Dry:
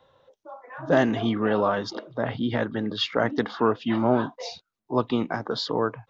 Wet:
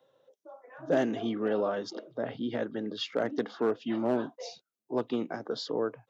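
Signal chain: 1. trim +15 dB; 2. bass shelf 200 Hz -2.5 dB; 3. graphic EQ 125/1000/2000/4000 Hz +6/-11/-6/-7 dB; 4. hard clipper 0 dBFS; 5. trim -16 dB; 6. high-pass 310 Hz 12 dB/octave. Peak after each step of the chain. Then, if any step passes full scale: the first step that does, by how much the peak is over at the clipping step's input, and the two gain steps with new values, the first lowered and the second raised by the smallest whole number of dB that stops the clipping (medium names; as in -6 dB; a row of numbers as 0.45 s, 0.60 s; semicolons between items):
+7.0 dBFS, +7.0 dBFS, +4.0 dBFS, 0.0 dBFS, -16.0 dBFS, -15.0 dBFS; step 1, 4.0 dB; step 1 +11 dB, step 5 -12 dB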